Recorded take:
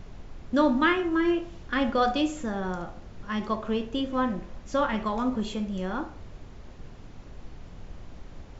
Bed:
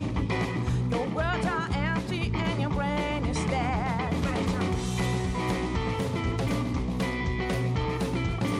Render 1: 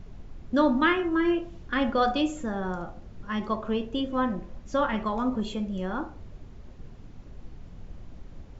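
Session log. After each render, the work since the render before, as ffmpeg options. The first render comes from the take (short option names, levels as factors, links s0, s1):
-af "afftdn=nr=6:nf=-45"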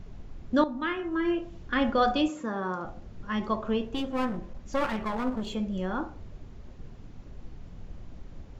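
-filter_complex "[0:a]asettb=1/sr,asplit=3[s0][s1][s2];[s0]atrim=end=2.284[s3];[s1]atrim=start=2.28:end=2.85,asetpts=PTS-STARTPTS,afade=t=in:d=0.004:c=qsin,afade=t=out:st=0.566:d=0.004:c=qsin,highpass=200,equalizer=f=710:t=q:w=4:g=-4,equalizer=f=1100:t=q:w=4:g=8,equalizer=f=3200:t=q:w=4:g=-3,lowpass=f=6500:w=0.5412,lowpass=f=6500:w=1.3066[s4];[s2]atrim=start=2.846[s5];[s3][s4]acrossfade=d=0.004:c1=hsin:c2=qsin[s6];[s6][s5]acrossfade=d=0.004:c1=qsin:c2=hsin,asplit=3[s7][s8][s9];[s7]afade=t=out:st=3.85:d=0.02[s10];[s8]aeval=exprs='clip(val(0),-1,0.02)':c=same,afade=t=in:st=3.85:d=0.02,afade=t=out:st=5.54:d=0.02[s11];[s9]afade=t=in:st=5.54:d=0.02[s12];[s10][s11][s12]amix=inputs=3:normalize=0,asplit=2[s13][s14];[s13]atrim=end=0.64,asetpts=PTS-STARTPTS,afade=t=out:st=0.636:d=0.004:c=hsin:silence=0.211349[s15];[s14]atrim=start=0.64,asetpts=PTS-STARTPTS,afade=t=in:d=1.02:silence=0.211349[s16];[s15][s16]concat=n=2:v=0:a=1"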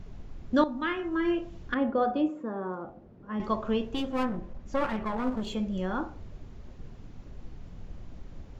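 -filter_complex "[0:a]asettb=1/sr,asplit=3[s0][s1][s2];[s0]atrim=end=1.744[s3];[s1]atrim=start=1.74:end=3.4,asetpts=PTS-STARTPTS,afade=t=in:d=0.004:c=qsin,afade=t=out:st=1.656:d=0.004:c=qsin,bandpass=f=380:t=q:w=0.69[s4];[s2]atrim=start=3.396[s5];[s3][s4]acrossfade=d=0.004:c1=hsin:c2=qsin[s6];[s6][s5]acrossfade=d=0.004:c1=qsin:c2=hsin,asettb=1/sr,asplit=3[s7][s8][s9];[s7]atrim=end=4.234[s10];[s8]atrim=start=4.23:end=5.24,asetpts=PTS-STARTPTS,afade=t=in:d=0.004:c=qsin,afade=t=out:st=1.006:d=0.004:c=qsin,highshelf=f=3000:g=-8.5[s11];[s9]atrim=start=5.236[s12];[s10][s11]acrossfade=d=0.004:c1=hsin:c2=qsin[s13];[s13][s12]acrossfade=d=0.004:c1=qsin:c2=hsin"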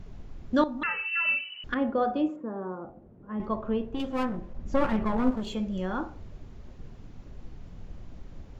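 -filter_complex "[0:a]asettb=1/sr,asplit=3[s0][s1][s2];[s0]atrim=end=0.834[s3];[s1]atrim=start=0.83:end=1.64,asetpts=PTS-STARTPTS,afade=t=in:d=0.004:c=qsin,afade=t=out:st=0.806:d=0.004:c=qsin,lowpass=f=2600:t=q:w=0.5098,lowpass=f=2600:t=q:w=0.6013,lowpass=f=2600:t=q:w=0.9,lowpass=f=2600:t=q:w=2.563,afreqshift=-3000[s4];[s2]atrim=start=1.636[s5];[s3][s4]acrossfade=d=0.004:c1=hsin:c2=qsin[s6];[s6][s5]acrossfade=d=0.004:c1=qsin:c2=hsin,asettb=1/sr,asplit=3[s7][s8][s9];[s7]atrim=end=2.364[s10];[s8]atrim=start=2.36:end=4,asetpts=PTS-STARTPTS,afade=t=in:d=0.004:c=qsin,afade=t=out:st=1.636:d=0.004:c=qsin,lowpass=f=1100:p=1[s11];[s9]atrim=start=3.996[s12];[s10][s11]acrossfade=d=0.004:c1=hsin:c2=qsin[s13];[s13][s12]acrossfade=d=0.004:c1=qsin:c2=hsin,asettb=1/sr,asplit=3[s14][s15][s16];[s14]atrim=end=4.584[s17];[s15]atrim=start=4.58:end=5.31,asetpts=PTS-STARTPTS,afade=t=in:d=0.004:c=qsin,afade=t=out:st=0.726:d=0.004:c=qsin,lowshelf=f=460:g=7.5[s18];[s16]atrim=start=5.306[s19];[s17][s18]acrossfade=d=0.004:c1=hsin:c2=qsin[s20];[s20][s19]acrossfade=d=0.004:c1=qsin:c2=hsin"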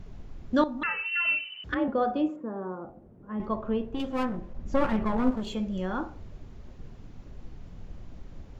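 -filter_complex "[0:a]asettb=1/sr,asplit=3[s0][s1][s2];[s0]atrim=end=1.034[s3];[s1]atrim=start=1.03:end=1.88,asetpts=PTS-STARTPTS,afade=t=in:d=0.004:c=qsin,afade=t=out:st=0.846:d=0.004:c=qsin,afreqshift=38[s4];[s2]atrim=start=1.876[s5];[s3][s4]acrossfade=d=0.004:c1=hsin:c2=qsin[s6];[s6][s5]acrossfade=d=0.004:c1=qsin:c2=hsin"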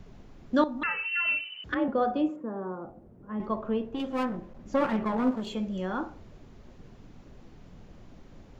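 -filter_complex "[0:a]acrossover=split=140|3400[s0][s1][s2];[s0]acompressor=threshold=0.00398:ratio=6[s3];[s2]alimiter=level_in=4.73:limit=0.0631:level=0:latency=1:release=134,volume=0.211[s4];[s3][s1][s4]amix=inputs=3:normalize=0"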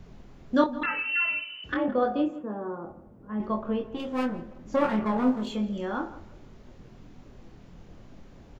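-filter_complex "[0:a]asplit=2[s0][s1];[s1]adelay=24,volume=0.531[s2];[s0][s2]amix=inputs=2:normalize=0,asplit=2[s3][s4];[s4]adelay=167,lowpass=f=3300:p=1,volume=0.133,asplit=2[s5][s6];[s6]adelay=167,lowpass=f=3300:p=1,volume=0.31,asplit=2[s7][s8];[s8]adelay=167,lowpass=f=3300:p=1,volume=0.31[s9];[s3][s5][s7][s9]amix=inputs=4:normalize=0"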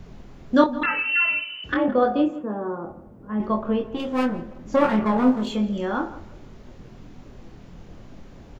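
-af "volume=1.88"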